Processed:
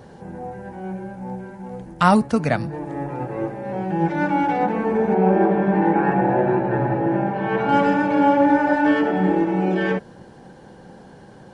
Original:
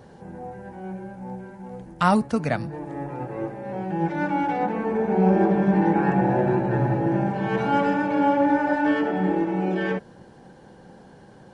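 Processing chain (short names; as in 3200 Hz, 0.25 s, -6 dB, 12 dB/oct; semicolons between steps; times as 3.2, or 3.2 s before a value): 5.14–7.69 tone controls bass -6 dB, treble -14 dB; gain +4 dB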